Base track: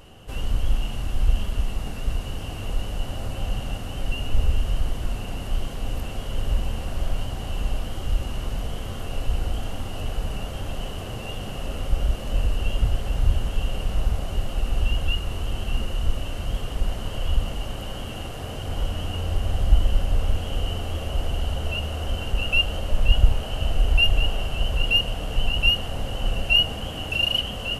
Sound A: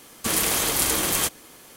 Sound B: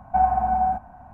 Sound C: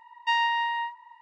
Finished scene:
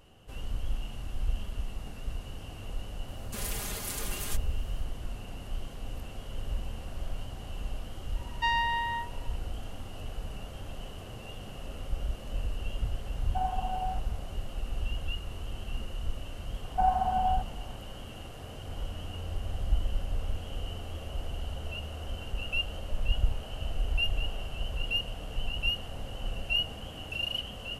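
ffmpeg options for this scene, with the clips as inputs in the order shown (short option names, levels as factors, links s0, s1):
-filter_complex "[2:a]asplit=2[s0][s1];[0:a]volume=0.299[s2];[1:a]aecho=1:1:4.9:0.95,atrim=end=1.76,asetpts=PTS-STARTPTS,volume=0.133,afade=t=in:d=0.004:c=hsin,afade=t=out:st=1.756:d=0.004:c=hsin,adelay=3080[s3];[3:a]atrim=end=1.21,asetpts=PTS-STARTPTS,volume=0.668,afade=t=in:d=0.004:c=hsin,afade=t=out:st=1.206:d=0.004:c=hsin,adelay=8150[s4];[s0]atrim=end=1.13,asetpts=PTS-STARTPTS,volume=0.224,afade=t=in:d=0.004:c=hsin,afade=t=out:st=1.126:d=0.004:c=hsin,adelay=13210[s5];[s1]atrim=end=1.13,asetpts=PTS-STARTPTS,volume=0.473,afade=t=in:d=0.004:c=hsin,afade=t=out:st=1.126:d=0.004:c=hsin,adelay=16640[s6];[s2][s3][s4][s5][s6]amix=inputs=5:normalize=0"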